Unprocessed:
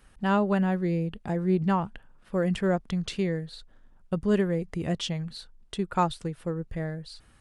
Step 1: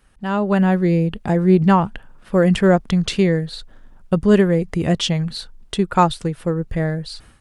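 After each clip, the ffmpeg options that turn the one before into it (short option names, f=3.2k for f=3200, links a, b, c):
-af "dynaudnorm=f=330:g=3:m=12dB"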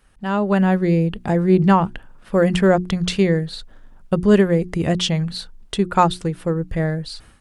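-af "bandreject=f=60:t=h:w=6,bandreject=f=120:t=h:w=6,bandreject=f=180:t=h:w=6,bandreject=f=240:t=h:w=6,bandreject=f=300:t=h:w=6,bandreject=f=360:t=h:w=6"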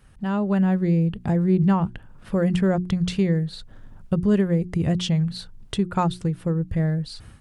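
-af "equalizer=f=110:w=0.73:g=12,acompressor=threshold=-35dB:ratio=1.5"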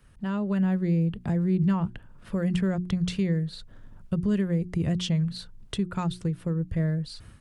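-filter_complex "[0:a]bandreject=f=790:w=12,acrossover=split=240|1500[a][b][c];[b]alimiter=limit=-23dB:level=0:latency=1:release=137[d];[a][d][c]amix=inputs=3:normalize=0,volume=-3.5dB"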